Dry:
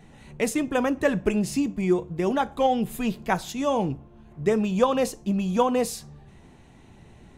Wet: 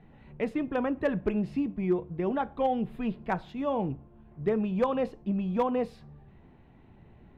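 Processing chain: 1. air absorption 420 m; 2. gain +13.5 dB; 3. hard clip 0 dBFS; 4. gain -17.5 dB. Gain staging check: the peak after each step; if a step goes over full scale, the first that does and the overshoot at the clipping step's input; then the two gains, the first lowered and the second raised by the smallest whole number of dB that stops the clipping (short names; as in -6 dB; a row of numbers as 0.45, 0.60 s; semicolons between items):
-8.0, +5.5, 0.0, -17.5 dBFS; step 2, 5.5 dB; step 2 +7.5 dB, step 4 -11.5 dB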